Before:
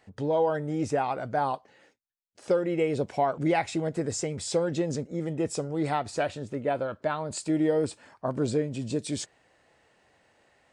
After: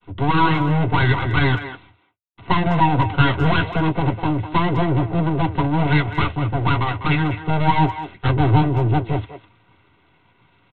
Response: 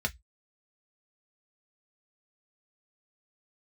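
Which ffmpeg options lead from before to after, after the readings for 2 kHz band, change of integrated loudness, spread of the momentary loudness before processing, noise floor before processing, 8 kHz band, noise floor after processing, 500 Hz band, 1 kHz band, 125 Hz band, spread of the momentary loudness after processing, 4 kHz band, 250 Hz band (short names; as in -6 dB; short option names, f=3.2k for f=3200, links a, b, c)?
+15.0 dB, +9.5 dB, 7 LU, -66 dBFS, under -25 dB, -60 dBFS, +0.5 dB, +11.0 dB, +17.0 dB, 5 LU, +12.0 dB, +9.0 dB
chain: -filter_complex "[0:a]agate=range=-33dB:threshold=-60dB:ratio=3:detection=peak,lowpass=f=1.9k:w=0.5412,lowpass=f=1.9k:w=1.3066,adynamicequalizer=threshold=0.00251:dfrequency=1200:dqfactor=6.7:tfrequency=1200:tqfactor=6.7:attack=5:release=100:ratio=0.375:range=2.5:mode=boostabove:tftype=bell,asplit=2[a][b];[b]asoftclip=type=hard:threshold=-30dB,volume=-7dB[c];[a][c]amix=inputs=2:normalize=0,acontrast=56,aresample=8000,aeval=exprs='abs(val(0))':c=same,aresample=44100,asplit=2[d][e];[e]adelay=200,highpass=300,lowpass=3.4k,asoftclip=type=hard:threshold=-16dB,volume=-10dB[f];[d][f]amix=inputs=2:normalize=0[g];[1:a]atrim=start_sample=2205,asetrate=66150,aresample=44100[h];[g][h]afir=irnorm=-1:irlink=0,volume=2.5dB"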